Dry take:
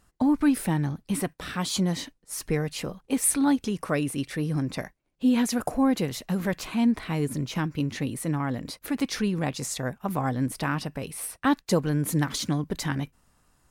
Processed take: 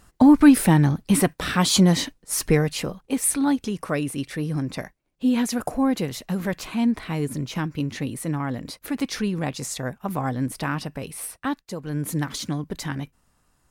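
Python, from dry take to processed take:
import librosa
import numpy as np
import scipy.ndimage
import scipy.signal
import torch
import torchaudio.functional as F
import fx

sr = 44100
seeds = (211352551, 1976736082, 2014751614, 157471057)

y = fx.gain(x, sr, db=fx.line((2.41, 9.0), (3.17, 1.0), (11.29, 1.0), (11.76, -10.5), (11.97, -1.0)))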